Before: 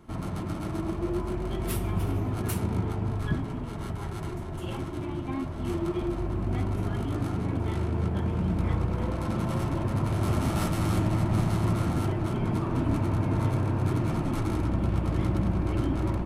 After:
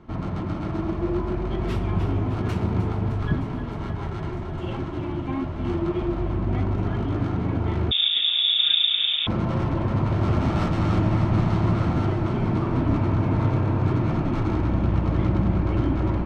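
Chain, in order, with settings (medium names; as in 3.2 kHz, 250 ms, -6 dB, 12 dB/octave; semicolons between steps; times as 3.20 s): distance through air 170 m; on a send: thinning echo 307 ms, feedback 81%, level -11 dB; 7.91–9.27 s: on the sum: frequency inversion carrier 3.6 kHz; trim +4.5 dB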